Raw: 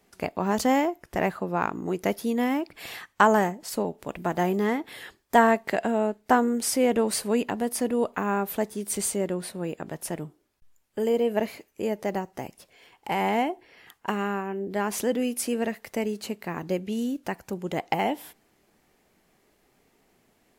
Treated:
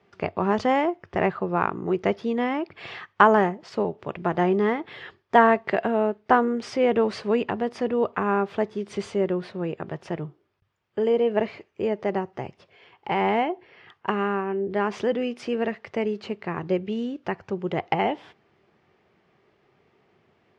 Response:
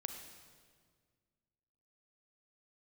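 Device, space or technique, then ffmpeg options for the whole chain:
guitar cabinet: -af "highpass=84,equalizer=frequency=94:width_type=q:width=4:gain=8,equalizer=frequency=140:width_type=q:width=4:gain=5,equalizer=frequency=270:width_type=q:width=4:gain=-6,equalizer=frequency=380:width_type=q:width=4:gain=5,equalizer=frequency=1200:width_type=q:width=4:gain=4,equalizer=frequency=4100:width_type=q:width=4:gain=-5,lowpass=frequency=4300:width=0.5412,lowpass=frequency=4300:width=1.3066,volume=1.5dB"

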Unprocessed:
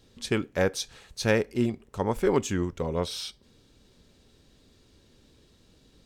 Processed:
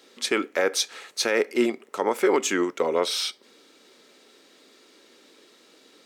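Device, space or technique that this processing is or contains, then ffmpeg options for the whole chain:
laptop speaker: -af "highpass=frequency=300:width=0.5412,highpass=frequency=300:width=1.3066,equalizer=frequency=1300:width_type=o:width=0.23:gain=6,equalizer=frequency=2100:width_type=o:width=0.39:gain=6,alimiter=limit=-19dB:level=0:latency=1:release=67,volume=8dB"

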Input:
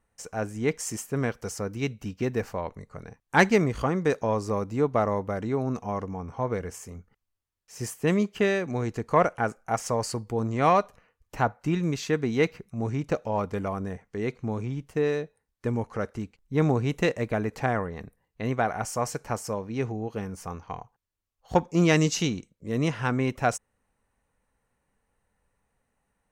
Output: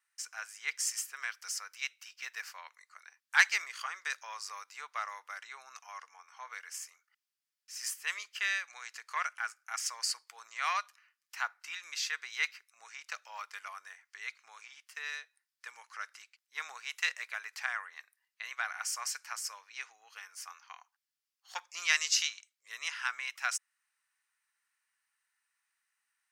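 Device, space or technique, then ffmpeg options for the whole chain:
headphones lying on a table: -filter_complex "[0:a]highpass=frequency=1400:width=0.5412,highpass=frequency=1400:width=1.3066,equalizer=frequency=5000:width_type=o:width=0.33:gain=6,asplit=3[link_01][link_02][link_03];[link_01]afade=type=out:start_time=9.1:duration=0.02[link_04];[link_02]asubboost=boost=5.5:cutoff=230,afade=type=in:start_time=9.1:duration=0.02,afade=type=out:start_time=10.05:duration=0.02[link_05];[link_03]afade=type=in:start_time=10.05:duration=0.02[link_06];[link_04][link_05][link_06]amix=inputs=3:normalize=0"

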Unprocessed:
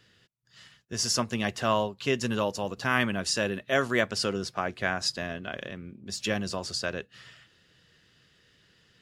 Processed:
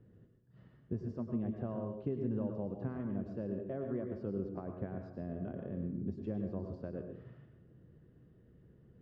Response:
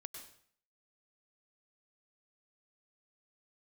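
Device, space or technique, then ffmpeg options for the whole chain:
television next door: -filter_complex "[0:a]acompressor=threshold=-39dB:ratio=4,lowpass=380[link_01];[1:a]atrim=start_sample=2205[link_02];[link_01][link_02]afir=irnorm=-1:irlink=0,volume=12.5dB"

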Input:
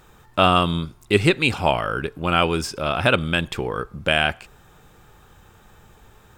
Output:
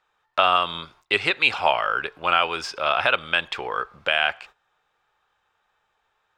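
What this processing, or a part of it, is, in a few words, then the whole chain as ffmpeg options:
DJ mixer with the lows and highs turned down: -filter_complex "[0:a]agate=range=-18dB:threshold=-43dB:ratio=16:detection=peak,acrossover=split=570 5200:gain=0.0794 1 0.112[link_01][link_02][link_03];[link_01][link_02][link_03]amix=inputs=3:normalize=0,alimiter=limit=-9dB:level=0:latency=1:release=297,volume=4dB"

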